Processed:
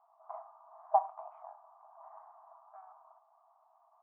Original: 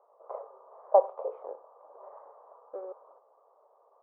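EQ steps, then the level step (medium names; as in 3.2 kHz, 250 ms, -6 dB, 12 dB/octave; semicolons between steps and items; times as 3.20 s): brick-wall FIR high-pass 630 Hz; distance through air 280 m; 0.0 dB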